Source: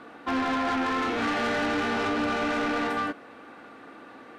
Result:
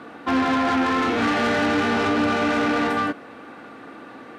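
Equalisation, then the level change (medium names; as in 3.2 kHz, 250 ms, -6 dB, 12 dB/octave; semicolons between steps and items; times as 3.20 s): high-pass 83 Hz; bass shelf 180 Hz +7 dB; +5.0 dB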